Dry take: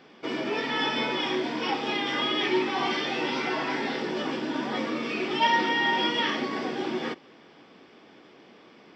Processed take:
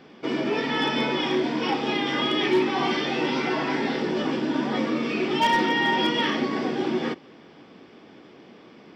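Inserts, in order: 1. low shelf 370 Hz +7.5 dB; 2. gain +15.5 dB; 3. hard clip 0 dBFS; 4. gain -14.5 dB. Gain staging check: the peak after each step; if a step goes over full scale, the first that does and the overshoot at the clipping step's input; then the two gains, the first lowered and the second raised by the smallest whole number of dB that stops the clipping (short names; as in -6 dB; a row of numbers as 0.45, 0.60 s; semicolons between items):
-10.0, +5.5, 0.0, -14.5 dBFS; step 2, 5.5 dB; step 2 +9.5 dB, step 4 -8.5 dB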